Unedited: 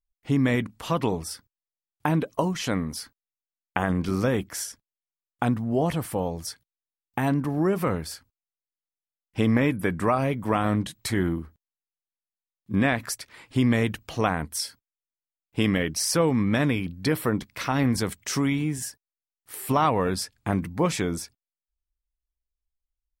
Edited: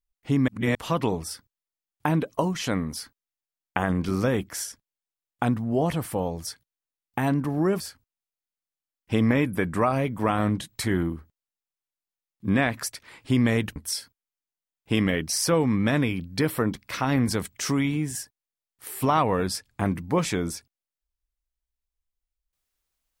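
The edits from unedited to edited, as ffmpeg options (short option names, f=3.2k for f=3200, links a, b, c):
-filter_complex "[0:a]asplit=5[a][b][c][d][e];[a]atrim=end=0.482[f];[b]atrim=start=0.478:end=0.752,asetpts=PTS-STARTPTS,areverse[g];[c]atrim=start=0.748:end=7.802[h];[d]atrim=start=8.058:end=14.022[i];[e]atrim=start=14.428[j];[f][g]acrossfade=d=0.004:c1=hsin:c2=hsin[k];[k][h]acrossfade=d=0.004:c1=hsin:c2=hsin[l];[l][i]acrossfade=d=0.004:c1=hsin:c2=hsin[m];[m][j]acrossfade=d=0.004:c1=hsin:c2=hsin"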